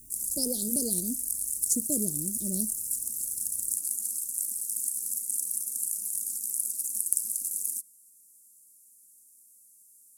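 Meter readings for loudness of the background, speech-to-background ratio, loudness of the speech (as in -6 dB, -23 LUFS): -29.0 LUFS, -3.0 dB, -32.0 LUFS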